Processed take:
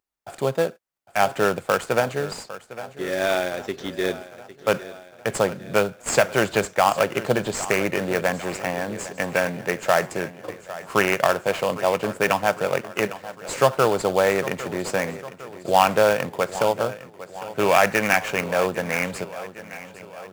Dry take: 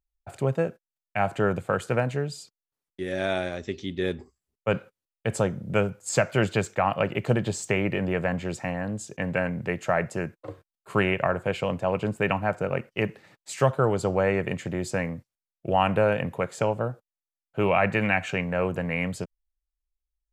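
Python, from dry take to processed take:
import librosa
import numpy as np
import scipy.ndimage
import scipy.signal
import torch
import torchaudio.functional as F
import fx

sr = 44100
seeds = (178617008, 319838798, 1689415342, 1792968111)

p1 = fx.highpass(x, sr, hz=620.0, slope=6)
p2 = fx.echo_feedback(p1, sr, ms=805, feedback_pct=57, wet_db=-15.5)
p3 = fx.sample_hold(p2, sr, seeds[0], rate_hz=4000.0, jitter_pct=20)
p4 = p2 + (p3 * librosa.db_to_amplitude(-4.0))
y = p4 * librosa.db_to_amplitude(4.5)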